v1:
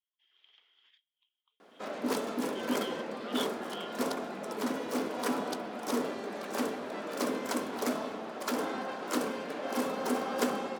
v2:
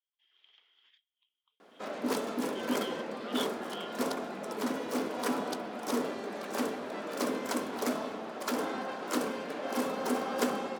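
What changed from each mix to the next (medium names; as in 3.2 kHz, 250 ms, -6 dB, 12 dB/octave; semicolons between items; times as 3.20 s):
no change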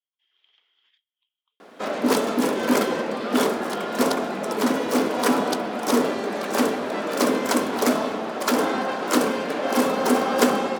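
background +11.5 dB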